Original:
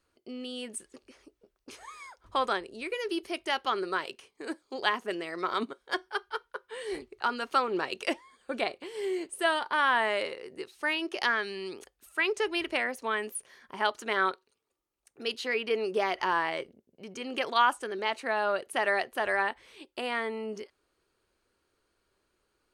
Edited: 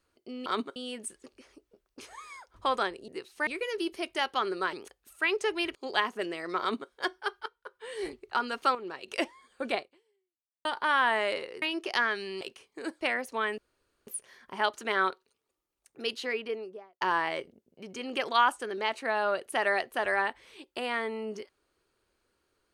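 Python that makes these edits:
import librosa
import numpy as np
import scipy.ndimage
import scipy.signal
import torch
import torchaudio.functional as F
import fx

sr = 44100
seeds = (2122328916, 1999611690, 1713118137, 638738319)

y = fx.studio_fade_out(x, sr, start_s=15.31, length_s=0.91)
y = fx.edit(y, sr, fx.swap(start_s=4.04, length_s=0.6, other_s=11.69, other_length_s=1.02),
    fx.duplicate(start_s=5.49, length_s=0.3, to_s=0.46),
    fx.fade_in_from(start_s=6.35, length_s=0.54, floor_db=-16.0),
    fx.clip_gain(start_s=7.64, length_s=0.33, db=-9.0),
    fx.fade_out_span(start_s=8.65, length_s=0.89, curve='exp'),
    fx.move(start_s=10.51, length_s=0.39, to_s=2.78),
    fx.insert_room_tone(at_s=13.28, length_s=0.49), tone=tone)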